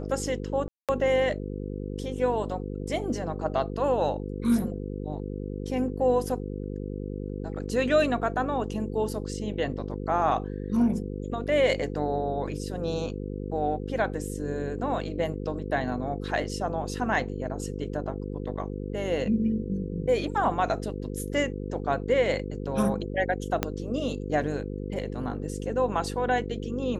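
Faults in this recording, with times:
buzz 50 Hz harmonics 10 -34 dBFS
0.68–0.89 s: dropout 207 ms
23.63 s: pop -9 dBFS

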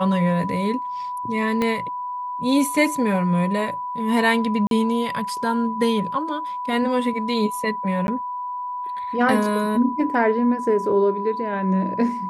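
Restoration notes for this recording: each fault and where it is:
whine 990 Hz -26 dBFS
1.62 s: pop -10 dBFS
4.67–4.71 s: dropout 42 ms
8.07–8.08 s: dropout 11 ms

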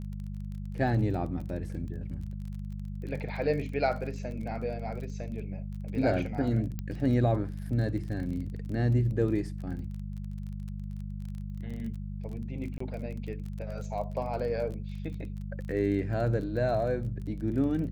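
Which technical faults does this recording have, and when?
crackle 26 per s -38 dBFS
hum 50 Hz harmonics 4 -37 dBFS
6.79 s: pop -22 dBFS
12.78–12.80 s: dropout 24 ms

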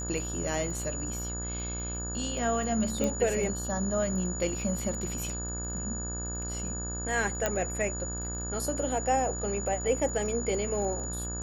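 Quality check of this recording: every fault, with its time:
buzz 60 Hz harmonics 30 -37 dBFS
crackle 14 per s -38 dBFS
whine 6.9 kHz -36 dBFS
3.04 s: pop -16 dBFS
7.46 s: pop -12 dBFS

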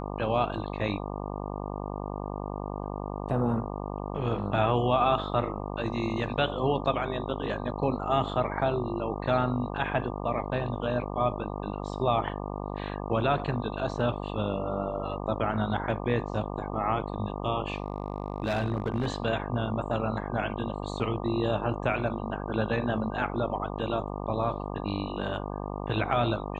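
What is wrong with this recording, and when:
buzz 50 Hz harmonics 24 -35 dBFS
17.74–19.08 s: clipped -23 dBFS

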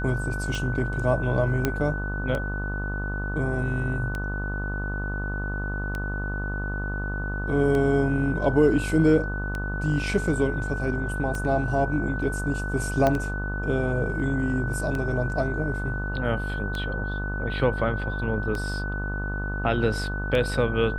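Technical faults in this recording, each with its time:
buzz 50 Hz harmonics 28 -30 dBFS
tick 33 1/3 rpm
whine 1.5 kHz -32 dBFS
1.65 s: pop -9 dBFS
13.07 s: pop -10 dBFS

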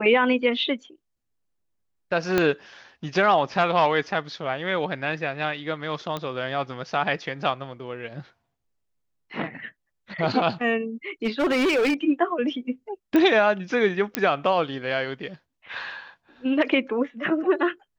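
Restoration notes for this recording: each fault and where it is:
2.38 s: pop -7 dBFS
6.17 s: pop -16 dBFS
11.25–11.94 s: clipped -18.5 dBFS
13.16 s: pop -11 dBFS
14.15 s: pop -7 dBFS

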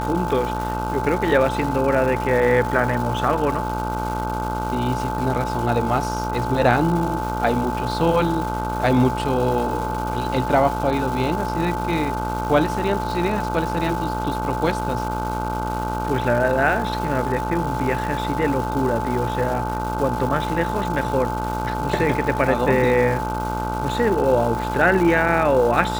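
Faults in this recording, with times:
buzz 60 Hz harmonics 26 -27 dBFS
crackle 530 per s -28 dBFS
whine 870 Hz -26 dBFS

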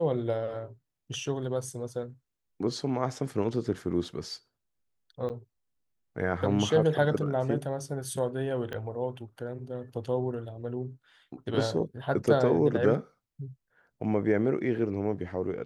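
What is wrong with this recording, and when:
5.29–5.30 s: dropout 9.2 ms
8.73 s: pop -23 dBFS

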